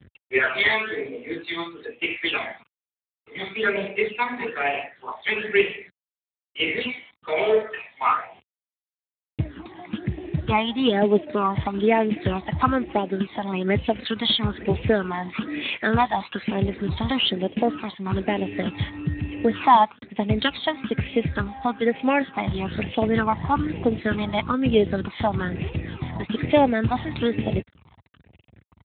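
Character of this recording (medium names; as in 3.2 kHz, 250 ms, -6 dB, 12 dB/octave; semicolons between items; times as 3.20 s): a quantiser's noise floor 8-bit, dither none; phasing stages 12, 1.1 Hz, lowest notch 450–1400 Hz; Speex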